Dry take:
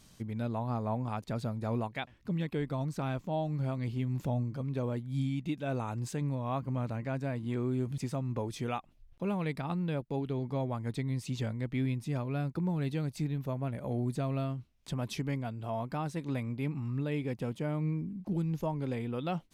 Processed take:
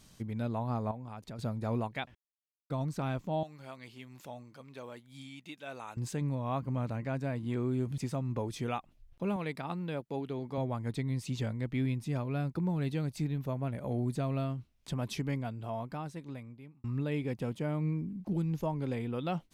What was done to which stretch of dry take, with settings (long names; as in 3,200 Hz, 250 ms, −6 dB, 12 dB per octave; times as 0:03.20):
0:00.91–0:01.39: downward compressor 2.5 to 1, threshold −44 dBFS
0:02.15–0:02.70: silence
0:03.43–0:05.97: high-pass filter 1,400 Hz 6 dB per octave
0:09.36–0:10.58: high-pass filter 250 Hz 6 dB per octave
0:15.43–0:16.84: fade out